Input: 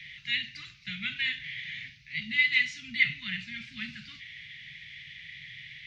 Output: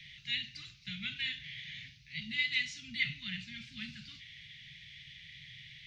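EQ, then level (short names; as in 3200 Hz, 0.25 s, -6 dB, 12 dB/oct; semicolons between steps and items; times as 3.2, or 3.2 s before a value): ten-band EQ 250 Hz -4 dB, 1000 Hz -8 dB, 2000 Hz -8 dB; 0.0 dB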